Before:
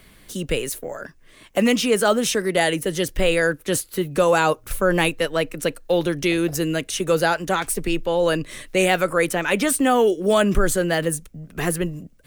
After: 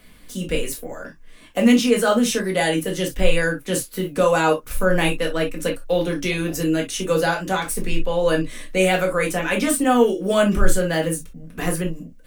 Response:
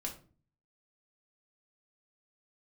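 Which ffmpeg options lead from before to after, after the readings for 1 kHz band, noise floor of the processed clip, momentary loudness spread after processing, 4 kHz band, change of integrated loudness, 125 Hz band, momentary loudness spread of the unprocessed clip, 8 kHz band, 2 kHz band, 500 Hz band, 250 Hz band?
-0.5 dB, -45 dBFS, 10 LU, -1.0 dB, 0.0 dB, +1.0 dB, 9 LU, -1.0 dB, -0.5 dB, 0.0 dB, +2.0 dB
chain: -filter_complex "[1:a]atrim=start_sample=2205,atrim=end_sample=3087[a];[0:a][a]afir=irnorm=-1:irlink=0"

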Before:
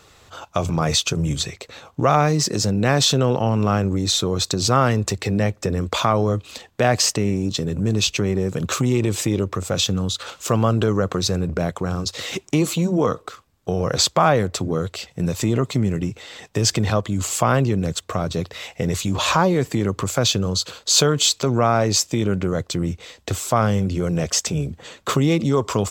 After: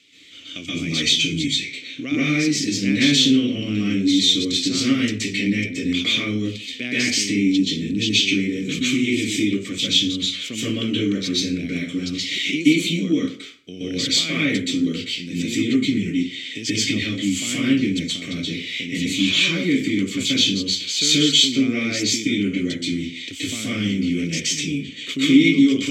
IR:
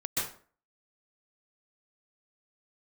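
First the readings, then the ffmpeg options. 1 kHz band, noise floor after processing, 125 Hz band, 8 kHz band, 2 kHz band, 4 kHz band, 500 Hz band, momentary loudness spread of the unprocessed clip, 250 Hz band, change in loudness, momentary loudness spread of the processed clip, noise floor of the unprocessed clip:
-21.0 dB, -36 dBFS, -8.0 dB, -2.5 dB, +5.0 dB, +5.0 dB, -8.5 dB, 10 LU, +4.0 dB, +0.5 dB, 10 LU, -54 dBFS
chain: -filter_complex "[0:a]aexciter=amount=3.1:drive=8:freq=2.1k,asplit=3[a][b][c];[a]bandpass=f=270:t=q:w=8,volume=0dB[d];[b]bandpass=f=2.29k:t=q:w=8,volume=-6dB[e];[c]bandpass=f=3.01k:t=q:w=8,volume=-9dB[f];[d][e][f]amix=inputs=3:normalize=0[g];[1:a]atrim=start_sample=2205[h];[g][h]afir=irnorm=-1:irlink=0,volume=4dB"

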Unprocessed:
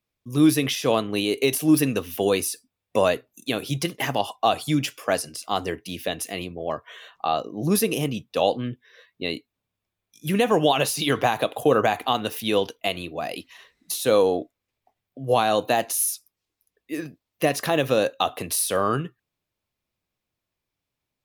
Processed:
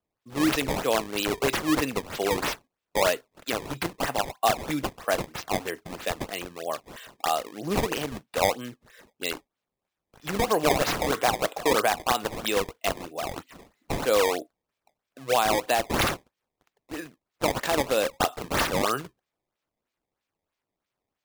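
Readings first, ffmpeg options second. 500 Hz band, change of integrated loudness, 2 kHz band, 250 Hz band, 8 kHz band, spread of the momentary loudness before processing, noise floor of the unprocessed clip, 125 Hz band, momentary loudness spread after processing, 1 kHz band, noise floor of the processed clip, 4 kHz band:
-4.0 dB, -3.0 dB, +0.5 dB, -6.0 dB, -4.0 dB, 13 LU, -84 dBFS, -6.5 dB, 12 LU, -1.5 dB, under -85 dBFS, -2.5 dB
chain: -af "highpass=f=590:p=1,acrusher=samples=18:mix=1:aa=0.000001:lfo=1:lforange=28.8:lforate=3.1"

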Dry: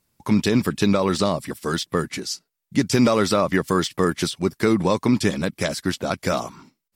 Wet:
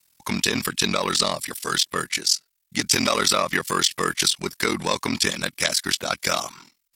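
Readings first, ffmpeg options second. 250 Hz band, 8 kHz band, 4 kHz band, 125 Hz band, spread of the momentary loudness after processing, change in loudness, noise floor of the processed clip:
-9.0 dB, +9.0 dB, +7.5 dB, -9.5 dB, 5 LU, -0.5 dB, -73 dBFS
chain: -af "acontrast=49,tiltshelf=f=970:g=-9.5,aeval=exprs='val(0)*sin(2*PI*21*n/s)':c=same,volume=-3dB"

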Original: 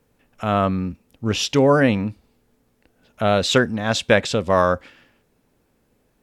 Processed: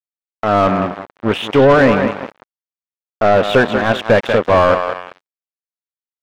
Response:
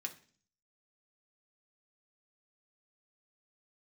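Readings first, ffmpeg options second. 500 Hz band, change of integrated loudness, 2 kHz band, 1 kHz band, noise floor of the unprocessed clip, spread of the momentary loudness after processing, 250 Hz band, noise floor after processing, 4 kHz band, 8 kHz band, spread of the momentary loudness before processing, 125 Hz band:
+7.0 dB, +5.5 dB, +6.0 dB, +7.5 dB, -66 dBFS, 12 LU, +4.0 dB, under -85 dBFS, -0.5 dB, n/a, 12 LU, +2.5 dB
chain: -filter_complex "[0:a]aresample=8000,aeval=exprs='sgn(val(0))*max(abs(val(0))-0.00631,0)':c=same,aresample=44100,aecho=1:1:190|380|570|760:0.282|0.121|0.0521|0.0224,deesser=0.65,aeval=exprs='sgn(val(0))*max(abs(val(0))-0.0282,0)':c=same,asplit=2[a][b];[b]highpass=f=720:p=1,volume=23dB,asoftclip=type=tanh:threshold=-3dB[c];[a][c]amix=inputs=2:normalize=0,lowpass=f=1.1k:p=1,volume=-6dB,volume=2.5dB"

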